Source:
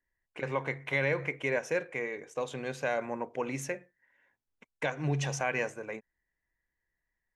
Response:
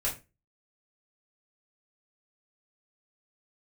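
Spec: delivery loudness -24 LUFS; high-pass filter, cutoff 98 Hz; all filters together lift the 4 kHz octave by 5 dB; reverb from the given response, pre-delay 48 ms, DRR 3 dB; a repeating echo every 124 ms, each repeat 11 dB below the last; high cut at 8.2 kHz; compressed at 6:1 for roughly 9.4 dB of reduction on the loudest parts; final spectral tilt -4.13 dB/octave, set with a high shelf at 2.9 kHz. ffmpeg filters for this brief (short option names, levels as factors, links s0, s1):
-filter_complex "[0:a]highpass=98,lowpass=8200,highshelf=f=2900:g=5,equalizer=f=4000:t=o:g=3,acompressor=threshold=0.02:ratio=6,aecho=1:1:124|248|372:0.282|0.0789|0.0221,asplit=2[s0][s1];[1:a]atrim=start_sample=2205,adelay=48[s2];[s1][s2]afir=irnorm=-1:irlink=0,volume=0.355[s3];[s0][s3]amix=inputs=2:normalize=0,volume=4.47"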